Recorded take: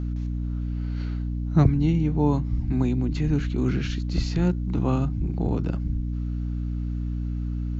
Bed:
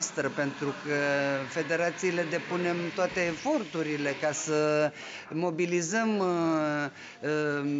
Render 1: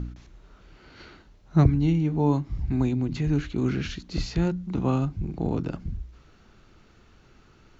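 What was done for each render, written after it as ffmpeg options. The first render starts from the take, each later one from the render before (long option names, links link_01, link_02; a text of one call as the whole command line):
ffmpeg -i in.wav -af "bandreject=frequency=60:width_type=h:width=4,bandreject=frequency=120:width_type=h:width=4,bandreject=frequency=180:width_type=h:width=4,bandreject=frequency=240:width_type=h:width=4,bandreject=frequency=300:width_type=h:width=4" out.wav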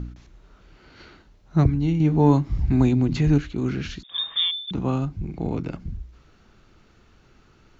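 ffmpeg -i in.wav -filter_complex "[0:a]asettb=1/sr,asplit=3[link_01][link_02][link_03];[link_01]atrim=end=2.004[link_04];[link_02]atrim=start=2:end=3.38,asetpts=PTS-STARTPTS,afade=type=in:duration=0.004:curve=qsin,afade=type=out:start_time=1.376:duration=0.004:curve=qsin,acontrast=55[link_05];[link_03]atrim=start=3.376[link_06];[link_04][link_05]acrossfade=duration=0.004:curve1=hsin:curve2=qsin[link_07];[link_07][link_06]acrossfade=duration=0.004:curve1=qsin:curve2=hsin,asettb=1/sr,asplit=3[link_08][link_09][link_10];[link_08]atrim=end=4.034[link_11];[link_09]atrim=start=4.03:end=4.71,asetpts=PTS-STARTPTS,afade=type=in:duration=0.004:curve=qsin,afade=type=out:start_time=0.676:duration=0.004:curve=qsin,lowpass=frequency=3100:width_type=q:width=0.5098,lowpass=frequency=3100:width_type=q:width=0.6013,lowpass=frequency=3100:width_type=q:width=0.9,lowpass=frequency=3100:width_type=q:width=2.563,afreqshift=-3700[link_12];[link_10]atrim=start=4.706[link_13];[link_11][link_12]acrossfade=duration=0.004:curve1=hsin:curve2=qsin[link_14];[link_14][link_13]acrossfade=duration=0.004:curve1=qsin:curve2=hsin,asettb=1/sr,asplit=3[link_15][link_16][link_17];[link_15]atrim=end=5.254[link_18];[link_16]atrim=start=5.25:end=5.77,asetpts=PTS-STARTPTS,afade=type=in:duration=0.004:curve=qsin,afade=type=out:start_time=0.516:duration=0.004:curve=qsin,equalizer=frequency=2200:width_type=o:width=0.23:gain=10.5[link_19];[link_17]atrim=start=5.766[link_20];[link_18][link_19]acrossfade=duration=0.004:curve1=hsin:curve2=qsin[link_21];[link_21][link_20]acrossfade=duration=0.004:curve1=qsin:curve2=hsin" out.wav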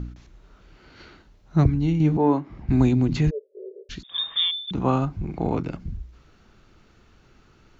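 ffmpeg -i in.wav -filter_complex "[0:a]asettb=1/sr,asplit=3[link_01][link_02][link_03];[link_01]atrim=end=2.174[link_04];[link_02]atrim=start=2.17:end=2.69,asetpts=PTS-STARTPTS,afade=type=in:duration=0.004:curve=qsin,afade=type=out:start_time=0.516:duration=0.004:curve=qsin,acrossover=split=220 2700:gain=0.1 1 0.158[link_05][link_06][link_07];[link_05][link_06][link_07]amix=inputs=3:normalize=0[link_08];[link_03]atrim=start=2.686[link_09];[link_04][link_08]acrossfade=duration=0.004:curve1=hsin:curve2=qsin[link_10];[link_10][link_09]acrossfade=duration=0.004:curve1=qsin:curve2=hsin,asplit=3[link_11][link_12][link_13];[link_11]afade=type=out:start_time=3.29:duration=0.02[link_14];[link_12]asuperpass=centerf=480:order=12:qfactor=2.3,afade=type=in:start_time=3.29:duration=0.02,afade=type=out:start_time=3.89:duration=0.02[link_15];[link_13]afade=type=in:start_time=3.89:duration=0.02[link_16];[link_14][link_15][link_16]amix=inputs=3:normalize=0,asettb=1/sr,asplit=3[link_17][link_18][link_19];[link_17]atrim=end=4.804[link_20];[link_18]atrim=start=4.8:end=5.63,asetpts=PTS-STARTPTS,afade=type=in:duration=0.004:curve=qsin,afade=type=out:start_time=0.826:duration=0.004:curve=qsin,equalizer=frequency=960:width=0.59:gain=8[link_21];[link_19]atrim=start=5.626[link_22];[link_20][link_21]acrossfade=duration=0.004:curve1=hsin:curve2=qsin[link_23];[link_23][link_22]acrossfade=duration=0.004:curve1=qsin:curve2=hsin" out.wav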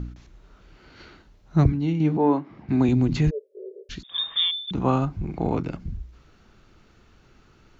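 ffmpeg -i in.wav -filter_complex "[0:a]asettb=1/sr,asplit=3[link_01][link_02][link_03];[link_01]atrim=end=1.724[link_04];[link_02]atrim=start=1.72:end=2.89,asetpts=PTS-STARTPTS,afade=type=in:duration=0.004:curve=qsin,afade=type=out:start_time=1.166:duration=0.004:curve=qsin,highpass=160,lowpass=5300[link_05];[link_03]atrim=start=2.886[link_06];[link_04][link_05]acrossfade=duration=0.004:curve1=hsin:curve2=qsin[link_07];[link_07][link_06]acrossfade=duration=0.004:curve1=qsin:curve2=hsin" out.wav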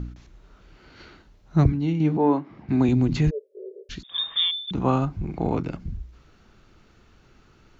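ffmpeg -i in.wav -af anull out.wav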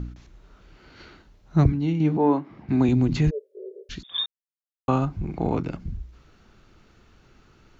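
ffmpeg -i in.wav -filter_complex "[0:a]asplit=3[link_01][link_02][link_03];[link_01]atrim=end=4.26,asetpts=PTS-STARTPTS,afade=type=out:start_time=4.256:duration=0.004:curve=hsin[link_04];[link_02]atrim=start=4.26:end=4.88,asetpts=PTS-STARTPTS,volume=0[link_05];[link_03]atrim=start=4.88,asetpts=PTS-STARTPTS,afade=type=in:duration=0.004:curve=hsin[link_06];[link_04][link_05][link_06]concat=n=3:v=0:a=1" out.wav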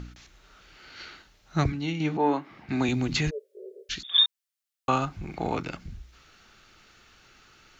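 ffmpeg -i in.wav -af "tiltshelf=frequency=770:gain=-8.5,bandreject=frequency=1000:width=13" out.wav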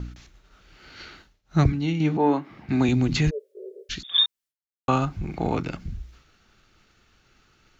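ffmpeg -i in.wav -af "agate=range=-33dB:threshold=-50dB:ratio=3:detection=peak,lowshelf=frequency=390:gain=7.5" out.wav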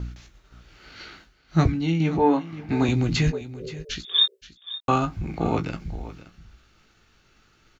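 ffmpeg -i in.wav -filter_complex "[0:a]asplit=2[link_01][link_02];[link_02]adelay=18,volume=-7.5dB[link_03];[link_01][link_03]amix=inputs=2:normalize=0,aecho=1:1:525:0.168" out.wav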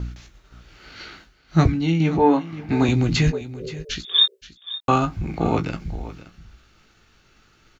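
ffmpeg -i in.wav -af "volume=3dB" out.wav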